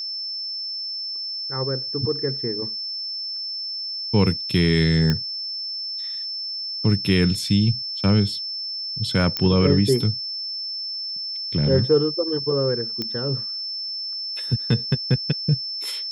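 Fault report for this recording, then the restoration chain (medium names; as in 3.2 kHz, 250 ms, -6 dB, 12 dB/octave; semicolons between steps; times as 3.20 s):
whine 5.3 kHz -27 dBFS
5.10 s: pop -9 dBFS
9.37 s: pop -9 dBFS
13.02 s: pop -13 dBFS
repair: de-click; band-stop 5.3 kHz, Q 30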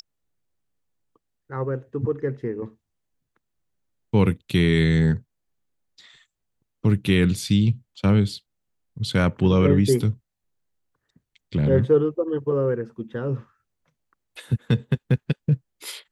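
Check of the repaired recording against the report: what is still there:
nothing left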